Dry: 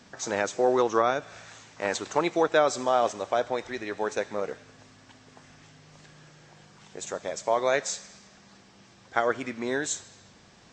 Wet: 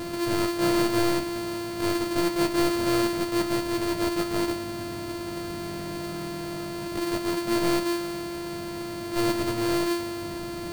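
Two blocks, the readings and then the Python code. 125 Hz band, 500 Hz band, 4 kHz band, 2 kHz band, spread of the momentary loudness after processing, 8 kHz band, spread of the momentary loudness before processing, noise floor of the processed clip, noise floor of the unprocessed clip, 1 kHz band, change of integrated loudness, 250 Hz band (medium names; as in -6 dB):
+10.5 dB, -1.0 dB, +6.5 dB, -1.0 dB, 10 LU, -0.5 dB, 13 LU, -34 dBFS, -56 dBFS, -2.5 dB, 0.0 dB, +10.5 dB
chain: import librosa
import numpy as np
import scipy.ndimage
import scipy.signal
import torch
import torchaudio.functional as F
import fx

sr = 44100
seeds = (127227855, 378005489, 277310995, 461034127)

y = np.r_[np.sort(x[:len(x) // 128 * 128].reshape(-1, 128), axis=1).ravel(), x[len(x) // 128 * 128:]]
y = fx.power_curve(y, sr, exponent=0.35)
y = fx.comb_fb(y, sr, f0_hz=320.0, decay_s=0.18, harmonics='all', damping=0.0, mix_pct=80)
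y = fx.attack_slew(y, sr, db_per_s=140.0)
y = F.gain(torch.from_numpy(y), 2.0).numpy()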